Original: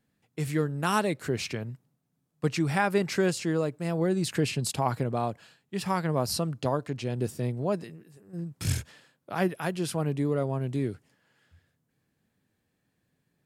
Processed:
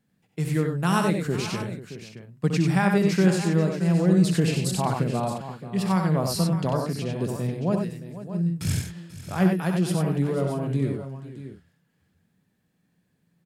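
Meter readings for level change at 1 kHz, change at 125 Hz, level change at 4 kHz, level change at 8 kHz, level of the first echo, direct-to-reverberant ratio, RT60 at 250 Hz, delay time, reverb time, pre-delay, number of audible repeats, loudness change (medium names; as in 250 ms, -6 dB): +2.0 dB, +7.0 dB, +2.0 dB, +2.0 dB, -8.0 dB, no reverb, no reverb, 64 ms, no reverb, no reverb, 5, +5.0 dB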